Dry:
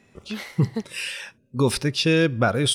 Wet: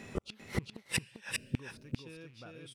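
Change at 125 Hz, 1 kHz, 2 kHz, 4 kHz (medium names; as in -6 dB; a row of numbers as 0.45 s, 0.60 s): -17.0 dB, -21.0 dB, -13.5 dB, -17.5 dB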